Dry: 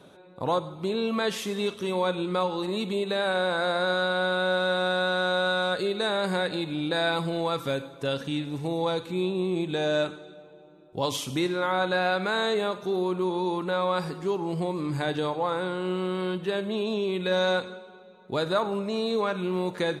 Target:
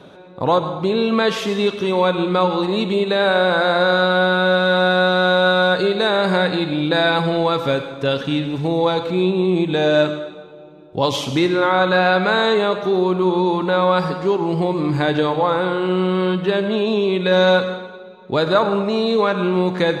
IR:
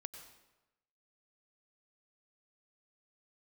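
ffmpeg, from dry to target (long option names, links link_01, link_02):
-filter_complex "[0:a]asplit=2[link_01][link_02];[1:a]atrim=start_sample=2205,lowpass=5800[link_03];[link_02][link_03]afir=irnorm=-1:irlink=0,volume=10.5dB[link_04];[link_01][link_04]amix=inputs=2:normalize=0"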